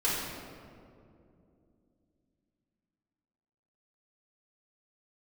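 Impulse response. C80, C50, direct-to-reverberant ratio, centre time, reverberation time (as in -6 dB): 1.0 dB, -1.5 dB, -9.0 dB, 114 ms, 2.6 s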